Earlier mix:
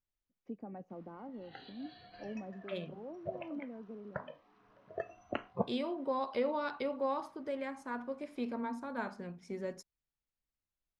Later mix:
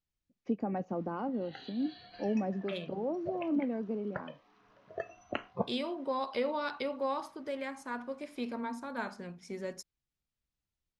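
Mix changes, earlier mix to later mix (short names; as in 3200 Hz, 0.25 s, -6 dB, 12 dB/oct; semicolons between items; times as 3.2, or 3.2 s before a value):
first voice +11.5 dB; master: add high shelf 2200 Hz +8 dB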